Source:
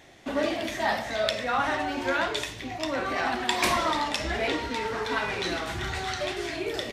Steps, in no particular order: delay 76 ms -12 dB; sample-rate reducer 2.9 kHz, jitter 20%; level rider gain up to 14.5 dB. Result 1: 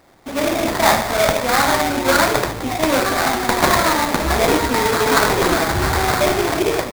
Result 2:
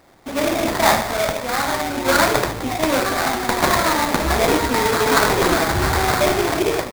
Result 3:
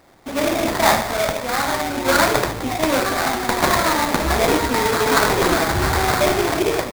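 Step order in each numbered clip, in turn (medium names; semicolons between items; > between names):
delay > sample-rate reducer > level rider; level rider > delay > sample-rate reducer; delay > level rider > sample-rate reducer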